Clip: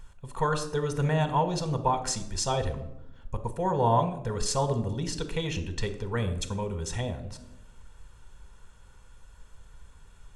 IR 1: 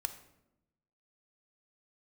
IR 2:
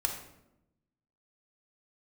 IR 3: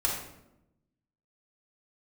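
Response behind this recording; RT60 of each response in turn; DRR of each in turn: 1; 0.90 s, 0.85 s, 0.85 s; 8.0 dB, 1.5 dB, -5.0 dB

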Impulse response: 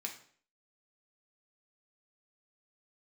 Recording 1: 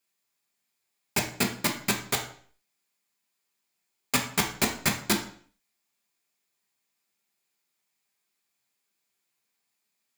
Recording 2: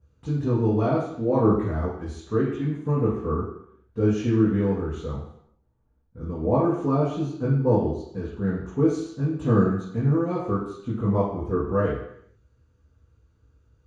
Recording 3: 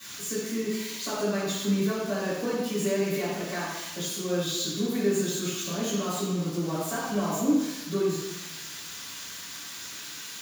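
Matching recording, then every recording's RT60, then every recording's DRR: 1; 0.50 s, 0.70 s, 1.1 s; 1.0 dB, -12.5 dB, -15.5 dB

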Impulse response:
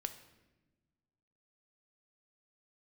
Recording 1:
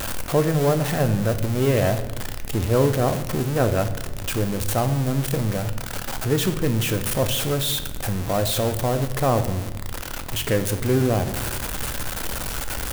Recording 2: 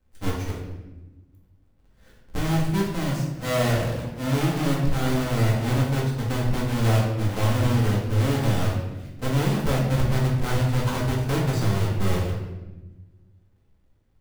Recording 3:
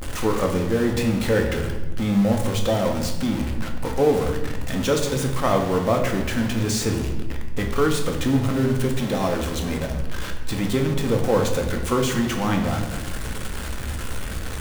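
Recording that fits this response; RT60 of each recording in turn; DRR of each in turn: 1; 1.1 s, 1.1 s, 1.1 s; 8.0 dB, -4.5 dB, 2.0 dB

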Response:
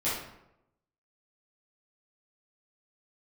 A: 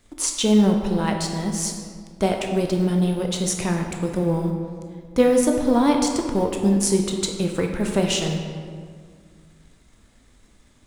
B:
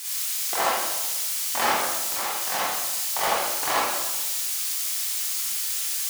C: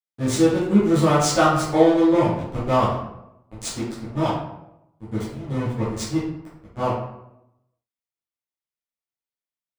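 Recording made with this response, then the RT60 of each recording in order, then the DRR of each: C; 2.0 s, 1.1 s, 0.85 s; 2.5 dB, -8.5 dB, -12.0 dB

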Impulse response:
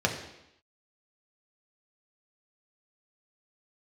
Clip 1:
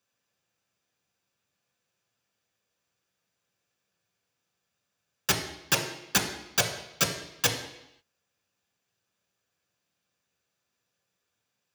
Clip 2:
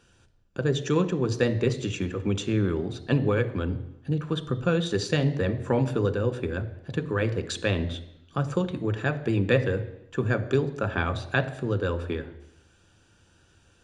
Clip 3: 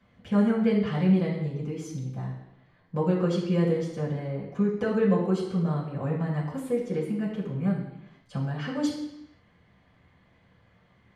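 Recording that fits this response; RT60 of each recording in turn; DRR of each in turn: 1; 0.85 s, 0.85 s, 0.85 s; 0.5 dB, 8.5 dB, -7.5 dB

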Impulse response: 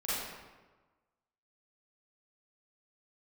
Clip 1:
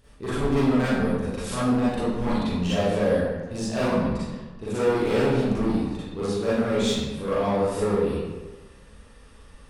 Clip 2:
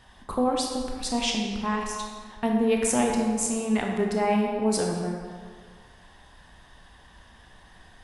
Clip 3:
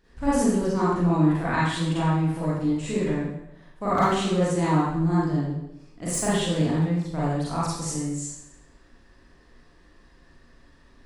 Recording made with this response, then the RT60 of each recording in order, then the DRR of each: 1; 1.3 s, 1.8 s, 0.85 s; -11.5 dB, 0.0 dB, -9.5 dB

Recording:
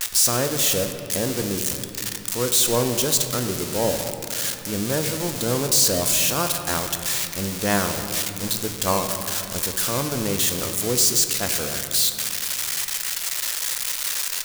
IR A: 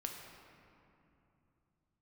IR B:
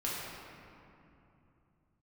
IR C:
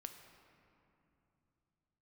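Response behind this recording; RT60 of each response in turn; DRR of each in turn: C; 2.8 s, 2.8 s, 2.9 s; 1.0 dB, -7.5 dB, 5.5 dB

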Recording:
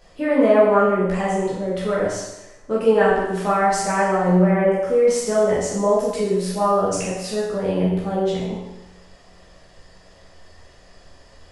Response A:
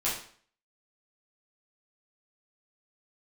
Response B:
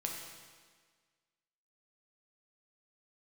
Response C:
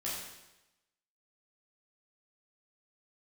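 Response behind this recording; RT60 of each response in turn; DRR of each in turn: C; 0.50 s, 1.6 s, 0.95 s; -9.0 dB, -0.5 dB, -7.5 dB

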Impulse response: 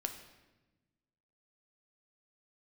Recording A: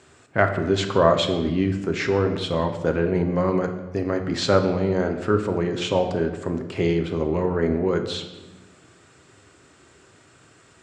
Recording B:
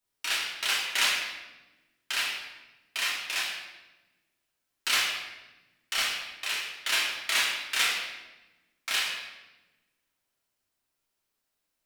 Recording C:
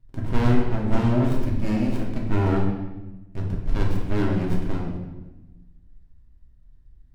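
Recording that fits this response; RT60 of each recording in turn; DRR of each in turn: A; 1.1 s, 1.1 s, 1.1 s; 5.0 dB, -6.5 dB, -2.5 dB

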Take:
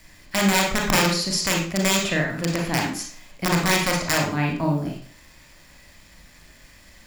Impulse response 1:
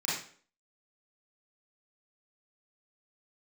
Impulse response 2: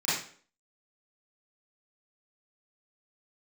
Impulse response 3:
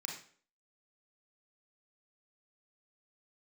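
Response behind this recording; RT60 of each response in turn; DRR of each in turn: 3; 0.50 s, 0.50 s, 0.50 s; -8.5 dB, -12.5 dB, 0.0 dB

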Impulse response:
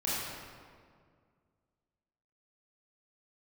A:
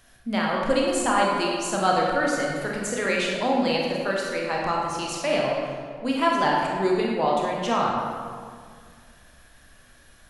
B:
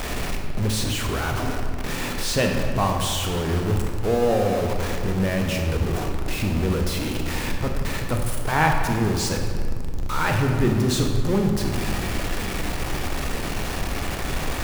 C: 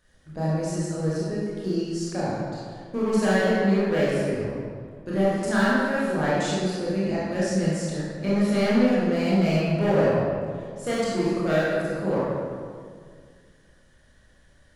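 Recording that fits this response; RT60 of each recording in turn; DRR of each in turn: C; 2.0 s, 2.0 s, 2.0 s; -3.0 dB, 2.0 dB, -9.0 dB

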